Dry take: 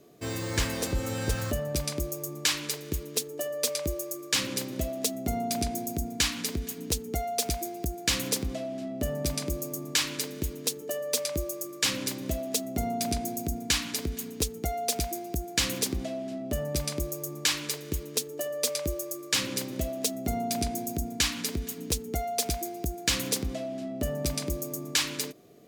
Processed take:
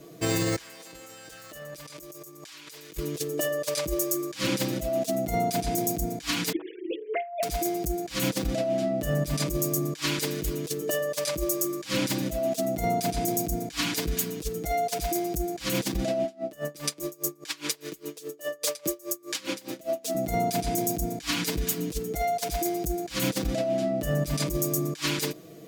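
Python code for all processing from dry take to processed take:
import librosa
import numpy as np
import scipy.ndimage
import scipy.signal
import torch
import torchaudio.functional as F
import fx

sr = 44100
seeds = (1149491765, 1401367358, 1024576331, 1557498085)

y = fx.chain(x, sr, fx.highpass(hz=770.0, slope=6),
    fx.env_flatten(amount_pct=100), at=(0.57, 2.97))
y = fx.chain(y, sr, fx.sine_speech(),
    fx.hum_notches(base_hz=60, count=9), at=(6.52, 7.43))
y = fx.chain(y, sr, fx.highpass(hz=270.0, slope=12),
    fx.tremolo_db(hz=4.9, depth_db=27), at=(16.24, 20.15))
y = y + 0.87 * np.pad(y, (int(6.2 * sr / 1000.0), 0))[:len(y)]
y = fx.over_compress(y, sr, threshold_db=-31.0, ratio=-0.5)
y = y * librosa.db_to_amplitude(2.5)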